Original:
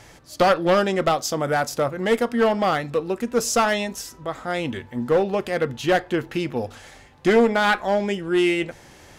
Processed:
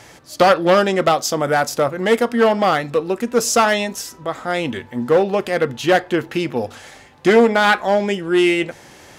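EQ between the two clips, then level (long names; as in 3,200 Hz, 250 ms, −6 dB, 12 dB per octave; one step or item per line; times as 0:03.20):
high-pass filter 140 Hz 6 dB per octave
+5.0 dB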